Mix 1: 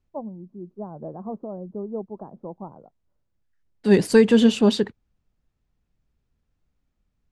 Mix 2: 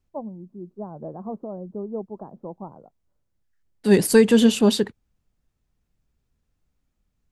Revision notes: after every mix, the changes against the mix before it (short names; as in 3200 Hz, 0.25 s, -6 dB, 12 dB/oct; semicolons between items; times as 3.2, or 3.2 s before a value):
master: remove air absorption 72 m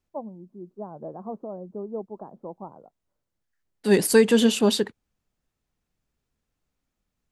master: add low shelf 180 Hz -10 dB